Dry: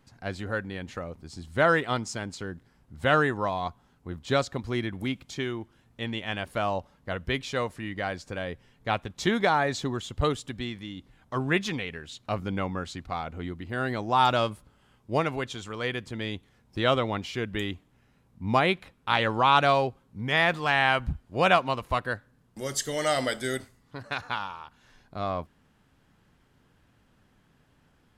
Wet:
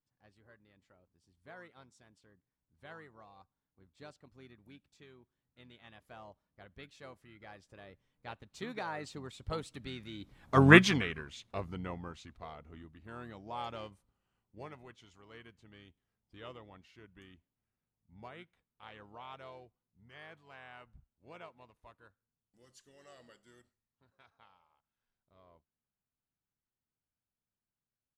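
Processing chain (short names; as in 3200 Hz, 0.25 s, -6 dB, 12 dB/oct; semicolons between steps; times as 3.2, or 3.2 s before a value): Doppler pass-by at 10.69, 24 m/s, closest 2.9 m; harmoniser -7 st -11 dB; gain +8 dB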